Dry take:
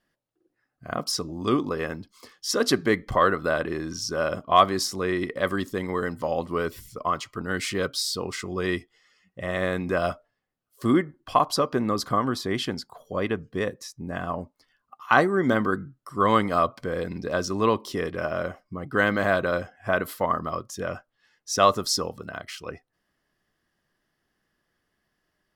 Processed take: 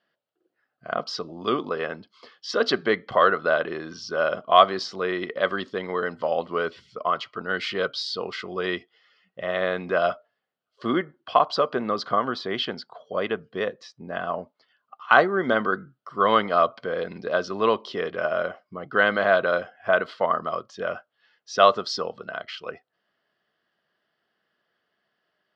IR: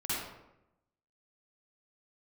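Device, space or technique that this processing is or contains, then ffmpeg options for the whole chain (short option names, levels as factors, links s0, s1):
kitchen radio: -af "highpass=200,equalizer=f=290:t=q:w=4:g=-6,equalizer=f=460:t=q:w=4:g=3,equalizer=f=660:t=q:w=4:g=6,equalizer=f=1400:t=q:w=4:g=6,equalizer=f=3100:t=q:w=4:g=6,equalizer=f=4500:t=q:w=4:g=4,lowpass=f=4500:w=0.5412,lowpass=f=4500:w=1.3066,volume=0.891"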